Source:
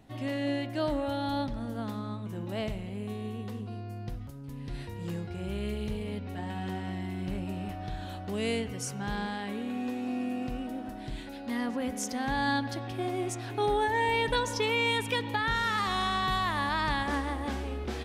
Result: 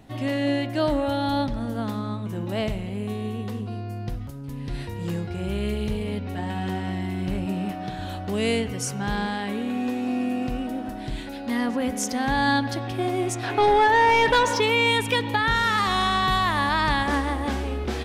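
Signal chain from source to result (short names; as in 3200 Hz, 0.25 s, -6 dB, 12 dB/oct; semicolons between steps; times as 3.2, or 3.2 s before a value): 7.46–7.99 resonant low shelf 110 Hz -13 dB, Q 1.5; 13.43–14.6 overdrive pedal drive 15 dB, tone 2300 Hz, clips at -17 dBFS; gain +7 dB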